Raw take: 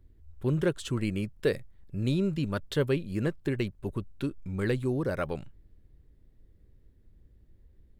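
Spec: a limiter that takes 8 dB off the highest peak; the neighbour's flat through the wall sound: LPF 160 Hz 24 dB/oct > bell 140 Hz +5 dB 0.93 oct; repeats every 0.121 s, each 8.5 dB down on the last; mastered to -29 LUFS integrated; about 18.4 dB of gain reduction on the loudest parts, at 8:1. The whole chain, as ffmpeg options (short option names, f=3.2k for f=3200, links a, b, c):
-af "acompressor=threshold=-41dB:ratio=8,alimiter=level_in=14dB:limit=-24dB:level=0:latency=1,volume=-14dB,lowpass=f=160:w=0.5412,lowpass=f=160:w=1.3066,equalizer=f=140:t=o:w=0.93:g=5,aecho=1:1:121|242|363|484:0.376|0.143|0.0543|0.0206,volume=21.5dB"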